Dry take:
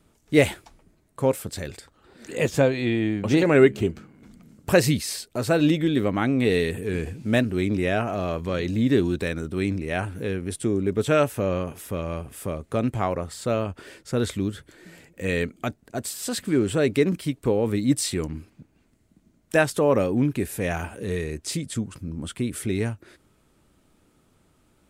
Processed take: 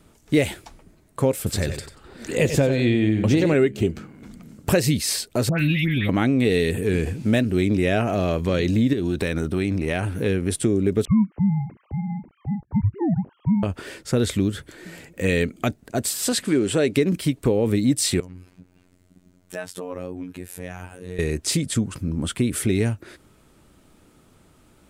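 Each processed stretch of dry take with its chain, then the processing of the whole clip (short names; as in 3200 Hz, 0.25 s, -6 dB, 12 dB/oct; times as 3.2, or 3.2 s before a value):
1.37–3.54 low shelf 85 Hz +9 dB + feedback echo 92 ms, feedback 22%, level -10 dB
5.49–6.09 EQ curve 160 Hz 0 dB, 430 Hz -19 dB, 680 Hz -13 dB, 1500 Hz -5 dB, 2200 Hz +7 dB, 7500 Hz -23 dB, 11000 Hz 0 dB + upward compressor, threshold -29 dBFS + dispersion highs, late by 0.104 s, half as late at 1700 Hz
8.93–10.26 notch 7400 Hz, Q 11 + compressor 4:1, threshold -25 dBFS
11.05–13.63 sine-wave speech + frequency shift -360 Hz + band-pass 220 Hz, Q 0.65
16.32–16.96 LPF 12000 Hz 24 dB/oct + bell 67 Hz -9 dB 2.8 oct
18.2–21.19 compressor 2:1, threshold -48 dBFS + robotiser 90.4 Hz
whole clip: dynamic EQ 1100 Hz, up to -6 dB, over -38 dBFS, Q 1.1; compressor 4:1, threshold -23 dBFS; gain +7 dB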